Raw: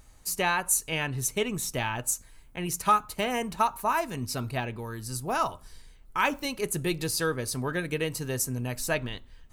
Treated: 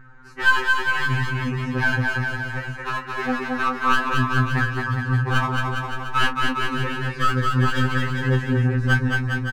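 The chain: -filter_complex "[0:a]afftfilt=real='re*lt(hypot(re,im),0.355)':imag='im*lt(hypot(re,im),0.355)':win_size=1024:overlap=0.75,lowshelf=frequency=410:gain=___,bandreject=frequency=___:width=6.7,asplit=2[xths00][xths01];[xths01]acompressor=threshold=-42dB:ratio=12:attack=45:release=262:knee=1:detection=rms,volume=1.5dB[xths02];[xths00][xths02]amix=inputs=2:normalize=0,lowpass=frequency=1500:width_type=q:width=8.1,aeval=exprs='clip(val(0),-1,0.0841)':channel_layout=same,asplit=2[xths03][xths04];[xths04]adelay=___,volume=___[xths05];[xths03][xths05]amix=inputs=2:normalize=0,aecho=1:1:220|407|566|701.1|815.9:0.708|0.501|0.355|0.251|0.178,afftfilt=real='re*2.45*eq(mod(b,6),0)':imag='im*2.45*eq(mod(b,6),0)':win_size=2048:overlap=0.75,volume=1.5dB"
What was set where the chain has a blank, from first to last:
3, 640, 24, -9dB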